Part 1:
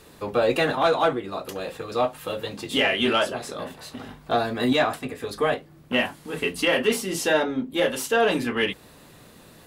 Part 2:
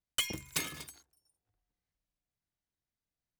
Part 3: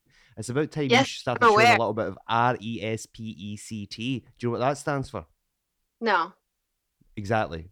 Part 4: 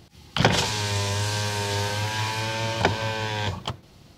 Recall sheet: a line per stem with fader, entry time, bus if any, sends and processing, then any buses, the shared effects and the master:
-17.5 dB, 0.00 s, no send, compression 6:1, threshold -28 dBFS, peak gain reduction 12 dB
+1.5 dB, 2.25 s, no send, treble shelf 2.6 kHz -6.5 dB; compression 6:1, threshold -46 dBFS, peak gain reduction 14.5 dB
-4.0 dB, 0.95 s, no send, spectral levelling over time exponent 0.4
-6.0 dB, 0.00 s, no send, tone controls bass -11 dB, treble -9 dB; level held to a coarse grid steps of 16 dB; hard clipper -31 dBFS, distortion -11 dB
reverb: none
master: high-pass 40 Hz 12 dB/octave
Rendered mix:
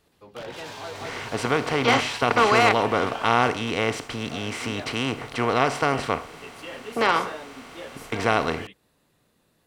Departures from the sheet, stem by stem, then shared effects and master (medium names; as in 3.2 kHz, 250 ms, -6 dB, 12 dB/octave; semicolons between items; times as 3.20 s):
stem 1: missing compression 6:1, threshold -28 dBFS, peak gain reduction 12 dB; stem 2: muted; master: missing high-pass 40 Hz 12 dB/octave